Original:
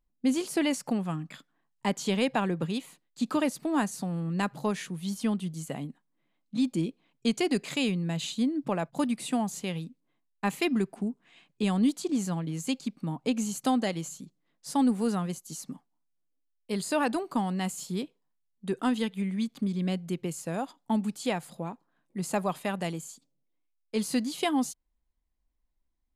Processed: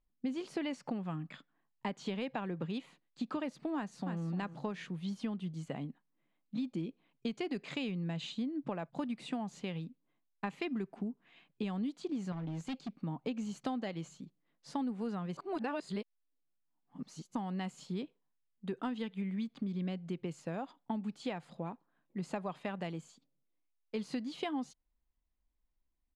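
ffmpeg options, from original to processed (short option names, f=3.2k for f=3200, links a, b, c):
-filter_complex "[0:a]asplit=2[a][b];[b]afade=t=in:st=3.76:d=0.01,afade=t=out:st=4.24:d=0.01,aecho=0:1:300|600|900:0.334965|0.0669931|0.0133986[c];[a][c]amix=inputs=2:normalize=0,asettb=1/sr,asplit=3[d][e][f];[d]atrim=end=12.324[g];[e]atrim=start=12.32:end=13.01,asetpts=PTS-STARTPTS,afade=t=in:d=0.004:c=qsin,afade=t=out:st=0.686:d=0.004:c=qsin,asoftclip=type=hard:threshold=-32dB[h];[f]atrim=start=13.006[i];[g][h]acrossfade=d=0.004:c1=hsin:c2=qsin[j];[j][i]acrossfade=d=0.004:c1=qsin:c2=hsin,asplit=3[k][l][m];[k]atrim=end=15.372[n];[l]atrim=start=15.368:end=17.352,asetpts=PTS-STARTPTS,areverse[o];[m]atrim=start=17.348[p];[n][o]acrossfade=d=0.004:c1=hsin:c2=hsin[q];[q][p]acrossfade=d=0.004:c1=hsin:c2=hsin,acompressor=threshold=-30dB:ratio=6,lowpass=3.6k,volume=-3.5dB"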